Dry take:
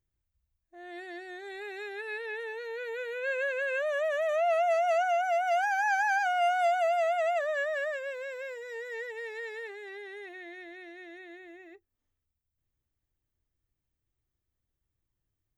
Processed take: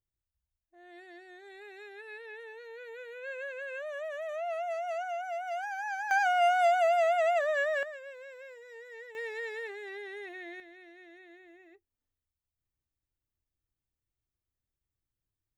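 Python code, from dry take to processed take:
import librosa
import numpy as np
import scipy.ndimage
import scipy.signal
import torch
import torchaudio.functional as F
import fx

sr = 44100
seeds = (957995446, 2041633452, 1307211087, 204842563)

y = fx.gain(x, sr, db=fx.steps((0.0, -8.5), (6.11, 1.5), (7.83, -9.0), (9.15, 1.0), (10.6, -6.5)))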